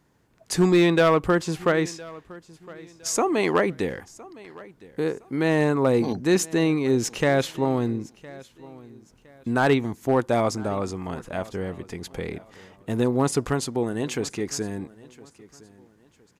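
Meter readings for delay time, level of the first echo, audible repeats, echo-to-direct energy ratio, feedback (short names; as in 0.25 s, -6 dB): 1.012 s, -21.0 dB, 2, -20.5 dB, 32%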